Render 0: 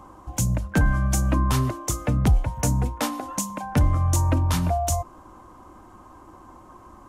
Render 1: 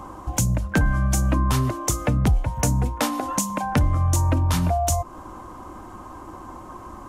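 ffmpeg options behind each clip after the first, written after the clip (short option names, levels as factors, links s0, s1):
-af "acompressor=threshold=0.0282:ratio=2,volume=2.51"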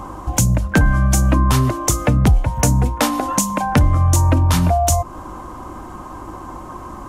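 -af "aeval=exprs='val(0)+0.00447*(sin(2*PI*50*n/s)+sin(2*PI*2*50*n/s)/2+sin(2*PI*3*50*n/s)/3+sin(2*PI*4*50*n/s)/4+sin(2*PI*5*50*n/s)/5)':c=same,volume=2"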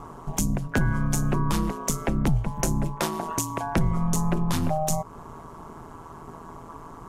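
-af "aeval=exprs='val(0)*sin(2*PI*81*n/s)':c=same,volume=0.473"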